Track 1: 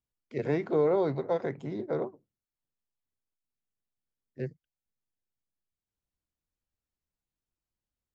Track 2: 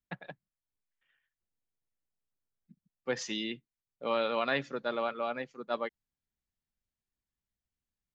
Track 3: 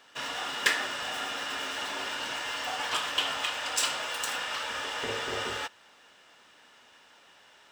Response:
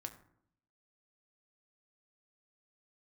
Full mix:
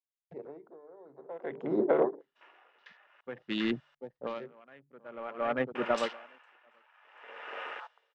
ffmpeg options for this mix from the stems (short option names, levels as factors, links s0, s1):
-filter_complex "[0:a]highpass=330,bandreject=f=50:t=h:w=6,bandreject=f=100:t=h:w=6,bandreject=f=150:t=h:w=6,bandreject=f=200:t=h:w=6,bandreject=f=250:t=h:w=6,bandreject=f=300:t=h:w=6,bandreject=f=350:t=h:w=6,bandreject=f=400:t=h:w=6,bandreject=f=450:t=h:w=6,acompressor=threshold=0.0251:ratio=3,volume=1.33,asplit=3[s0][s1][s2];[s1]volume=0.158[s3];[1:a]bandreject=f=72.32:t=h:w=4,bandreject=f=144.64:t=h:w=4,adynamicsmooth=sensitivity=7:basefreq=530,adelay=200,volume=0.841,asplit=2[s4][s5];[s5]volume=0.501[s6];[2:a]highpass=f=500:w=0.5412,highpass=f=500:w=1.3066,adelay=2200,volume=0.631,asplit=3[s7][s8][s9];[s7]atrim=end=3.21,asetpts=PTS-STARTPTS,afade=t=out:st=3.206:d=0.004:c=hsin[s10];[s8]atrim=start=3.21:end=5.75,asetpts=PTS-STARTPTS,volume=0[s11];[s9]atrim=start=5.75,asetpts=PTS-STARTPTS,afade=t=in:d=0.004:c=hsin[s12];[s10][s11][s12]concat=n=3:v=0:a=1,asplit=2[s13][s14];[s14]volume=0.266[s15];[s2]apad=whole_len=367868[s16];[s4][s16]sidechaincompress=threshold=0.00316:ratio=5:attack=16:release=501[s17];[s0][s17]amix=inputs=2:normalize=0,dynaudnorm=f=240:g=11:m=3.98,alimiter=limit=0.188:level=0:latency=1:release=198,volume=1[s18];[s3][s6][s15]amix=inputs=3:normalize=0,aecho=0:1:739:1[s19];[s13][s18][s19]amix=inputs=3:normalize=0,afwtdn=0.0126,lowpass=3600,aeval=exprs='val(0)*pow(10,-26*(0.5-0.5*cos(2*PI*0.52*n/s))/20)':c=same"